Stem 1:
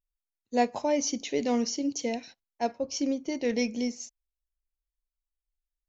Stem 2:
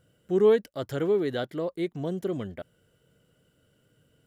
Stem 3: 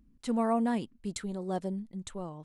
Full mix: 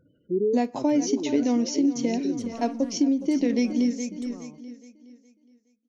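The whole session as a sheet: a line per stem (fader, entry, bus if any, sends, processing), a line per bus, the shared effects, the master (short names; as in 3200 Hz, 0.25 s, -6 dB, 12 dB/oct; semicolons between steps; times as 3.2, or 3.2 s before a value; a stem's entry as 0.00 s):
+2.0 dB, 0.00 s, no send, echo send -12.5 dB, expander -39 dBFS
+0.5 dB, 0.00 s, no send, no echo send, spectral gate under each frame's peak -15 dB strong; auto duck -8 dB, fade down 0.50 s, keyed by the first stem
-7.5 dB, 2.15 s, no send, no echo send, soft clip -31 dBFS, distortion -9 dB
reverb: off
echo: feedback echo 0.417 s, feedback 36%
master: bell 280 Hz +13 dB 0.59 oct; compressor 6:1, threshold -19 dBFS, peak gain reduction 8.5 dB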